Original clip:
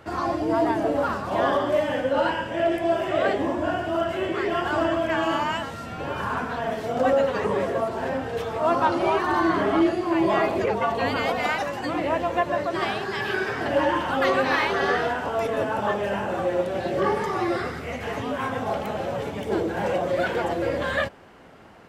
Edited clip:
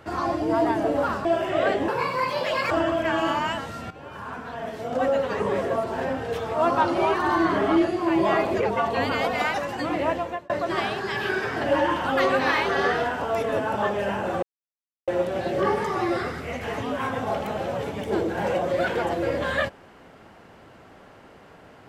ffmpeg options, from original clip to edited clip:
ffmpeg -i in.wav -filter_complex "[0:a]asplit=7[link_01][link_02][link_03][link_04][link_05][link_06][link_07];[link_01]atrim=end=1.252[link_08];[link_02]atrim=start=2.838:end=3.474[link_09];[link_03]atrim=start=3.47:end=4.75,asetpts=PTS-STARTPTS,asetrate=68355,aresample=44100,atrim=end_sample=36418,asetpts=PTS-STARTPTS[link_10];[link_04]atrim=start=4.746:end=5.95,asetpts=PTS-STARTPTS,afade=type=out:start_time=1.2:duration=0.004:curve=hsin:silence=0.223872[link_11];[link_05]atrim=start=5.95:end=12.54,asetpts=PTS-STARTPTS,afade=type=in:duration=1.76:silence=0.223872,afade=type=out:start_time=6.2:duration=0.39[link_12];[link_06]atrim=start=12.54:end=16.47,asetpts=PTS-STARTPTS,afade=type=in:duration=0.004:curve=hsin,afade=type=out:start_time=3.926:duration=0.004:curve=hsin,apad=pad_dur=0.65[link_13];[link_07]atrim=start=16.47,asetpts=PTS-STARTPTS,afade=type=in:duration=0.004:curve=hsin[link_14];[link_08][link_09]acrossfade=duration=0.004:curve1=hsin:curve2=hsin[link_15];[link_15][link_10]acrossfade=duration=0.004:curve1=hsin:curve2=hsin[link_16];[link_11][link_12][link_13][link_14]concat=n=4:v=0:a=1[link_17];[link_16][link_17]acrossfade=duration=0.004:curve1=hsin:curve2=hsin" out.wav

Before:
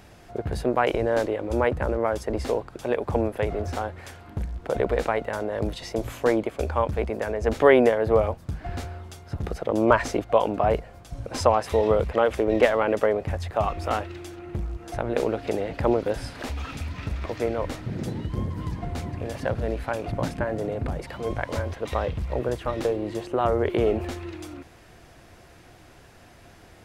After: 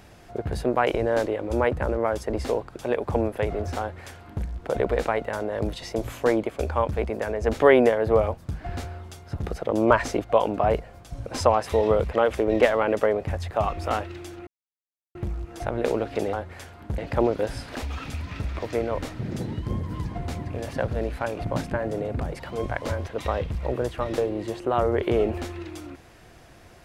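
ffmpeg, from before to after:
ffmpeg -i in.wav -filter_complex "[0:a]asplit=4[link_01][link_02][link_03][link_04];[link_01]atrim=end=14.47,asetpts=PTS-STARTPTS,afade=type=out:start_time=14.466:duration=0.004:curve=hsin,apad=pad_dur=0.68[link_05];[link_02]atrim=start=14.47:end=15.652,asetpts=PTS-STARTPTS,afade=type=in:duration=0.004:curve=hsin[link_06];[link_03]atrim=start=3.798:end=4.452[link_07];[link_04]atrim=start=15.648[link_08];[link_05][link_06]concat=n=2:v=0:a=1[link_09];[link_09][link_07]acrossfade=duration=0.004:curve1=hsin:curve2=hsin[link_10];[link_10][link_08]acrossfade=duration=0.004:curve1=hsin:curve2=hsin" out.wav

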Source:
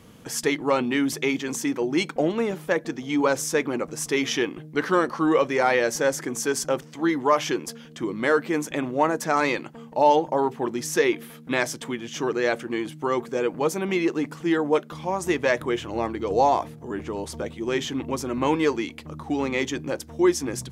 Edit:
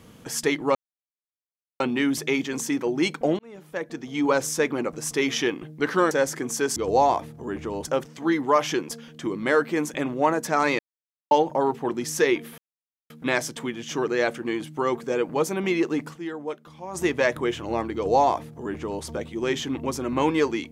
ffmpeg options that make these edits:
ffmpeg -i in.wav -filter_complex "[0:a]asplit=11[link_01][link_02][link_03][link_04][link_05][link_06][link_07][link_08][link_09][link_10][link_11];[link_01]atrim=end=0.75,asetpts=PTS-STARTPTS,afade=type=out:start_time=0.746:duration=0.004:curve=hsin,apad=pad_dur=1.05[link_12];[link_02]atrim=start=0.75:end=2.34,asetpts=PTS-STARTPTS,afade=type=in:duration=0.004:curve=hsin,afade=type=out:start_time=1.586:duration=0.004:curve=hsin[link_13];[link_03]atrim=start=2.34:end=5.062,asetpts=PTS-STARTPTS,afade=type=in:duration=0.91[link_14];[link_04]atrim=start=5.968:end=6.622[link_15];[link_05]atrim=start=16.188:end=17.282[link_16];[link_06]atrim=start=6.618:end=9.56,asetpts=PTS-STARTPTS,afade=type=out:start_time=2.938:duration=0.004:curve=hsin[link_17];[link_07]atrim=start=9.56:end=10.08,asetpts=PTS-STARTPTS,volume=0[link_18];[link_08]atrim=start=10.08:end=11.35,asetpts=PTS-STARTPTS,afade=type=in:duration=0.004:curve=hsin,afade=type=out:start_time=1.266:duration=0.004:curve=hsin,apad=pad_dur=0.52[link_19];[link_09]atrim=start=11.35:end=14.56,asetpts=PTS-STARTPTS,afade=type=in:duration=0.004:curve=hsin,afade=type=out:start_time=3.03:duration=0.18:curve=exp:silence=0.298538[link_20];[link_10]atrim=start=14.56:end=15.02,asetpts=PTS-STARTPTS,volume=-10.5dB[link_21];[link_11]atrim=start=15.02,asetpts=PTS-STARTPTS,afade=type=in:duration=0.18:curve=exp:silence=0.298538[link_22];[link_12][link_13][link_14]concat=n=3:v=0:a=1[link_23];[link_23][link_15]acrossfade=duration=0.004:curve1=hsin:curve2=hsin[link_24];[link_24][link_16]acrossfade=duration=0.004:curve1=hsin:curve2=hsin[link_25];[link_17][link_18][link_19][link_20][link_21][link_22]concat=n=6:v=0:a=1[link_26];[link_25][link_26]acrossfade=duration=0.004:curve1=hsin:curve2=hsin" out.wav

